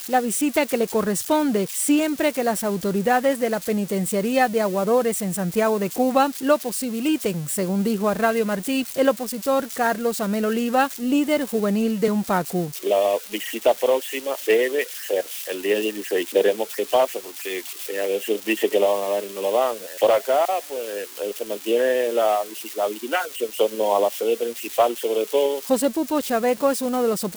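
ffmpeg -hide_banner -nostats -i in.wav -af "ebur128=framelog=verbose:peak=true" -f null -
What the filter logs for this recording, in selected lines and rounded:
Integrated loudness:
  I:         -22.3 LUFS
  Threshold: -32.3 LUFS
Loudness range:
  LRA:         1.8 LU
  Threshold: -42.3 LUFS
  LRA low:   -23.3 LUFS
  LRA high:  -21.5 LUFS
True peak:
  Peak:       -6.0 dBFS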